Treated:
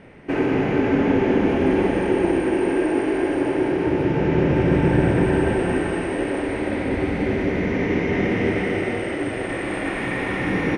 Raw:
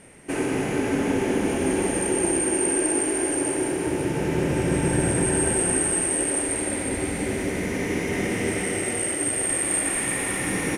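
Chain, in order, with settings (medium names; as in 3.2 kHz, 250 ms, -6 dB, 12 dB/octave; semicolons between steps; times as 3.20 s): distance through air 280 m; trim +5.5 dB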